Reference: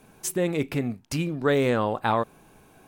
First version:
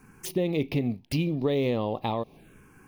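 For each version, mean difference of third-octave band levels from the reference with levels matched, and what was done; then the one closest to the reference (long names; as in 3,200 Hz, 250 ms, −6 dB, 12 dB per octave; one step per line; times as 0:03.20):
4.0 dB: running median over 3 samples
downward compressor, threshold −24 dBFS, peak gain reduction 6.5 dB
phaser swept by the level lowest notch 580 Hz, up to 1,500 Hz, full sweep at −31.5 dBFS
level +3 dB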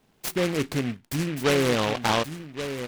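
9.0 dB: noise gate −49 dBFS, range −10 dB
on a send: single-tap delay 1,126 ms −10 dB
on the sum: short delay modulated by noise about 1,900 Hz, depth 0.13 ms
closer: first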